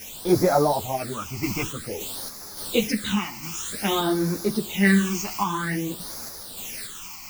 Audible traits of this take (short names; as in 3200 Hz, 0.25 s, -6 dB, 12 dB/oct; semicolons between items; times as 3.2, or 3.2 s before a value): a quantiser's noise floor 6-bit, dither triangular; phasing stages 8, 0.52 Hz, lowest notch 480–2900 Hz; random-step tremolo; a shimmering, thickened sound